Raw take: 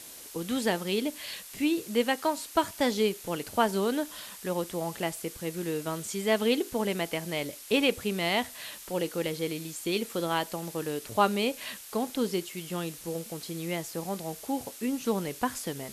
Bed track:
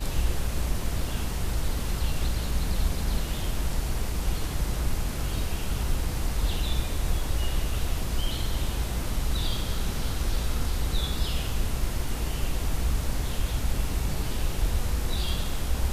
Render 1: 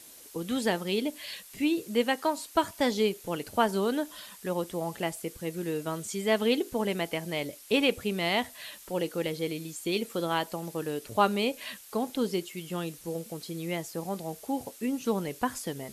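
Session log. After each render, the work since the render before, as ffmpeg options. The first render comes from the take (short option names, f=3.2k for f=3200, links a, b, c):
-af "afftdn=nr=6:nf=-46"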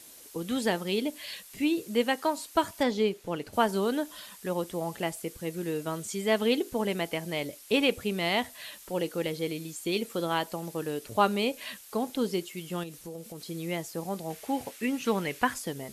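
-filter_complex "[0:a]asettb=1/sr,asplit=3[a][b][c];[a]atrim=end=2.834[d];[b]atrim=start=2.83:end=3.53,asetpts=PTS-STARTPTS,afade=t=in:d=0.004:c=qsin,afade=t=out:st=0.696:d=0.004:c=qsin,lowpass=f=3.3k:p=1[e];[c]atrim=start=3.526[f];[d][e]acrossfade=d=0.004:c1=hsin:c2=qsin[g];[g][f]acrossfade=d=0.004:c1=qsin:c2=hsin,asettb=1/sr,asplit=3[h][i][j];[h]atrim=end=12.834[k];[i]atrim=start=12.83:end=13.48,asetpts=PTS-STARTPTS,afade=t=in:d=0.004:c=qsin,afade=t=out:st=0.646:d=0.004:c=qsin,acompressor=threshold=-38dB:ratio=3:attack=3.2:release=140:knee=1:detection=peak[l];[j]atrim=start=13.476[m];[k][l]acrossfade=d=0.004:c1=hsin:c2=qsin[n];[n][m]acrossfade=d=0.004:c1=qsin:c2=hsin,asettb=1/sr,asplit=3[o][p][q];[o]atrim=end=14.304[r];[p]atrim=start=14.3:end=15.54,asetpts=PTS-STARTPTS,afade=t=in:d=0.004:c=qsin,afade=t=out:st=1.236:d=0.004:c=qsin,equalizer=f=2.1k:t=o:w=1.6:g=10[s];[q]atrim=start=15.536[t];[r][s]acrossfade=d=0.004:c1=hsin:c2=qsin[u];[u][t]acrossfade=d=0.004:c1=qsin:c2=hsin"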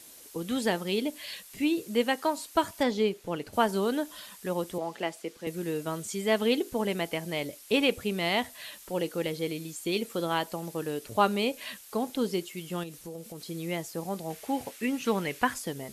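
-filter_complex "[0:a]asettb=1/sr,asplit=3[a][b][c];[a]atrim=end=4.784[d];[b]atrim=start=4.78:end=5.47,asetpts=PTS-STARTPTS,afade=t=in:d=0.004:c=qsin,afade=t=out:st=0.686:d=0.004:c=qsin,acrossover=split=200 6400:gain=0.0891 1 0.251[e][f][g];[e][f][g]amix=inputs=3:normalize=0[h];[c]atrim=start=5.466[i];[d][h]acrossfade=d=0.004:c1=hsin:c2=qsin[j];[j][i]acrossfade=d=0.004:c1=qsin:c2=hsin"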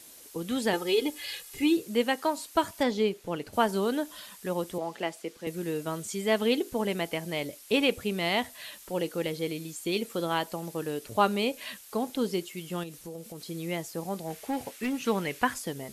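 -filter_complex "[0:a]asettb=1/sr,asplit=3[a][b][c];[a]atrim=end=0.734[d];[b]atrim=start=0.73:end=1.77,asetpts=PTS-STARTPTS,afade=t=in:d=0.004:c=qsin,afade=t=out:st=1.036:d=0.004:c=qsin,aecho=1:1:2.4:0.97,atrim=end_sample=45864[e];[c]atrim=start=1.766[f];[d][e]acrossfade=d=0.004:c1=hsin:c2=qsin[g];[g][f]acrossfade=d=0.004:c1=qsin:c2=hsin,asettb=1/sr,asplit=3[h][i][j];[h]atrim=end=14.244[k];[i]atrim=start=14.24:end=14.96,asetpts=PTS-STARTPTS,afade=t=in:d=0.004:c=qsin,afade=t=out:st=0.716:d=0.004:c=qsin,asoftclip=type=hard:threshold=-26dB[l];[j]atrim=start=14.956[m];[k][l]acrossfade=d=0.004:c1=hsin:c2=qsin[n];[n][m]acrossfade=d=0.004:c1=qsin:c2=hsin"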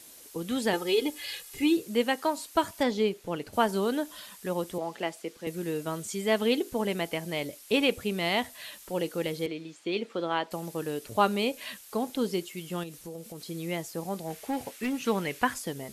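-filter_complex "[0:a]asettb=1/sr,asplit=3[a][b][c];[a]atrim=end=9.464[d];[b]atrim=start=9.46:end=10.51,asetpts=PTS-STARTPTS,afade=t=in:d=0.004:c=qsin,afade=t=out:st=1.046:d=0.004:c=qsin,highpass=220,lowpass=3.5k[e];[c]atrim=start=10.506[f];[d][e]acrossfade=d=0.004:c1=hsin:c2=qsin[g];[g][f]acrossfade=d=0.004:c1=qsin:c2=hsin"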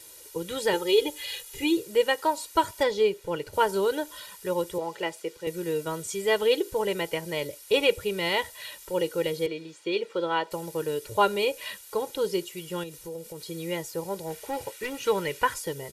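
-af "aecho=1:1:2.1:0.86"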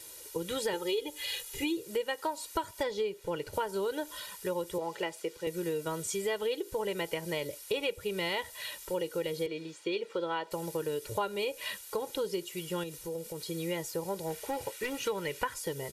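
-af "acompressor=threshold=-30dB:ratio=5"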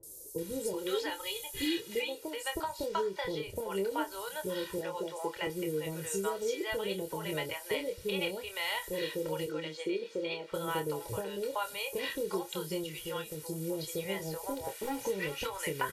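-filter_complex "[0:a]asplit=2[a][b];[b]adelay=26,volume=-7dB[c];[a][c]amix=inputs=2:normalize=0,acrossover=split=600|5900[d][e][f];[f]adelay=30[g];[e]adelay=380[h];[d][h][g]amix=inputs=3:normalize=0"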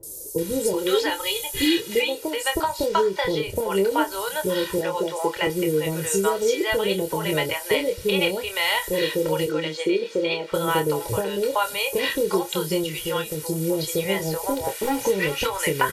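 -af "volume=12dB"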